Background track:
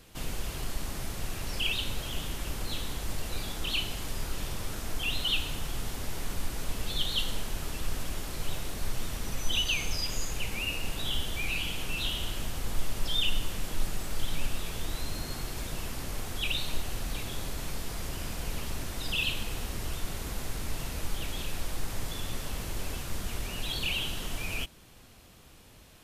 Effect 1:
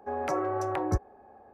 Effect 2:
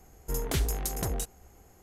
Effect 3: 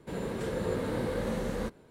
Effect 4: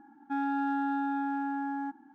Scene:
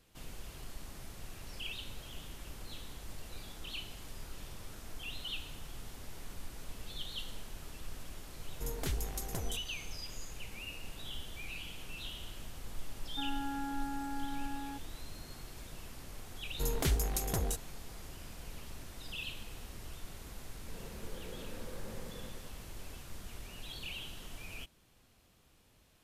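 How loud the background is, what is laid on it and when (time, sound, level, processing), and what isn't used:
background track -12 dB
8.32 s: add 2 -8 dB
12.87 s: add 4 -9 dB
16.31 s: add 2 -2.5 dB
20.60 s: add 3 -17.5 dB + bit-crushed delay 95 ms, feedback 80%, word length 10-bit, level -7.5 dB
not used: 1

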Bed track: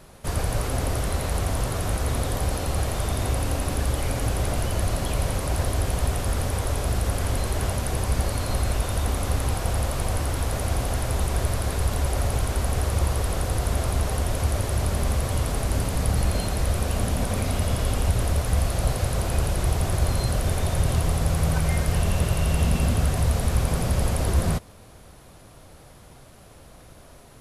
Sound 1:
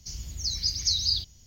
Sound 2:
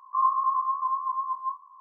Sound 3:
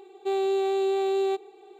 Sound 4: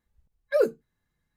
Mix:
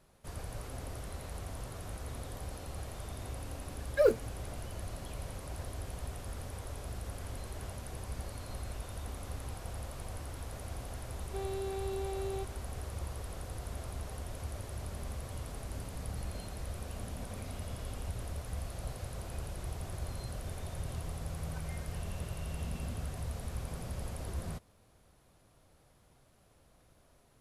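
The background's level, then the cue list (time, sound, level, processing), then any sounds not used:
bed track -17 dB
3.45 s: add 4 -2.5 dB + companding laws mixed up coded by A
11.08 s: add 3 -13.5 dB
not used: 1, 2

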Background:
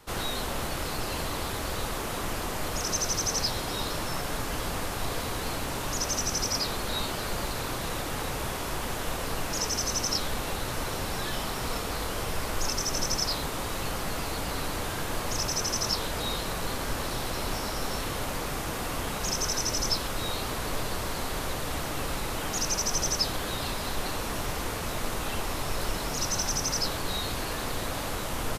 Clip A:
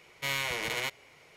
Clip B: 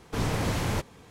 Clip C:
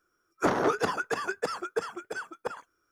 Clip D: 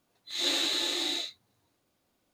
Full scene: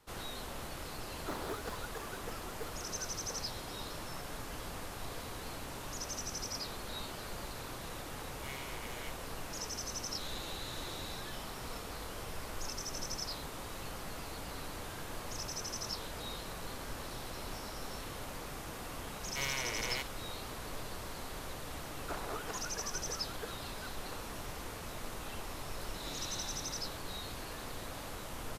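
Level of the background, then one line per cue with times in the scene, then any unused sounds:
background -11.5 dB
0.84 s: add C -16.5 dB + modulation noise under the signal 25 dB
8.20 s: add A -13 dB + chorus 1.5 Hz, delay 17.5 ms, depth 3.9 ms
9.90 s: add D -8 dB + compression, threshold -36 dBFS
19.13 s: add A -6 dB
21.66 s: add C -15 dB + high-pass 450 Hz
25.61 s: add D -16 dB + rotary cabinet horn 1 Hz
not used: B

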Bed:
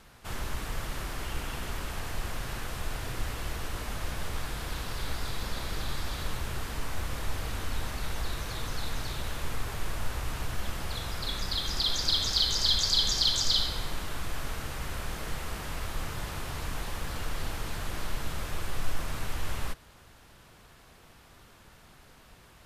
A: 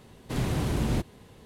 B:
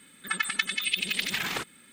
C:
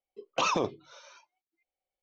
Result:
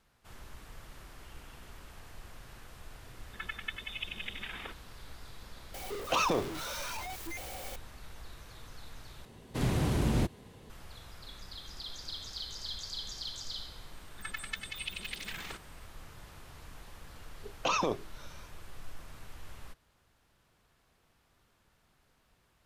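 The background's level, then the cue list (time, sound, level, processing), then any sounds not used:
bed -15 dB
3.09 s: add B -11.5 dB + brick-wall FIR band-pass 170–3800 Hz
5.74 s: add C -3 dB + jump at every zero crossing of -31.5 dBFS
9.25 s: replace with A -1.5 dB
13.94 s: add B -12 dB
17.27 s: add C -2.5 dB

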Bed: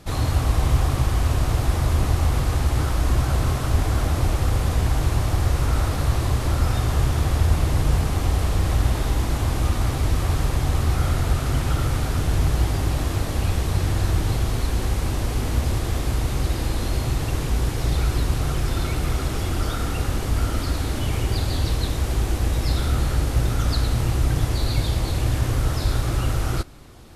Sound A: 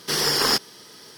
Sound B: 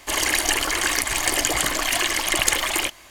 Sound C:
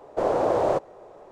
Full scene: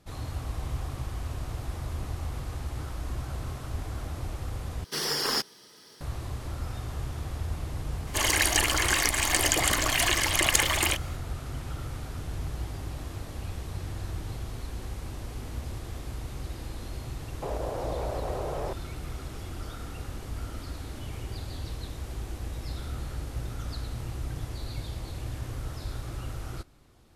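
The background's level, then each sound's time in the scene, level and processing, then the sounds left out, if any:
bed -14 dB
4.84 s: replace with A -7.5 dB
8.07 s: add B -3 dB
17.42 s: add C -13.5 dB + level flattener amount 100%

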